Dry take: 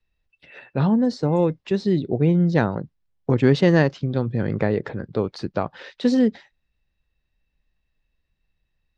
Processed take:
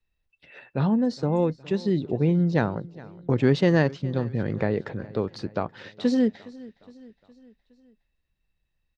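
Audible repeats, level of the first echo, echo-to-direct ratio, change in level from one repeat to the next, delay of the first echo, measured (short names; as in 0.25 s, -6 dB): 3, -20.5 dB, -19.0 dB, -5.5 dB, 0.414 s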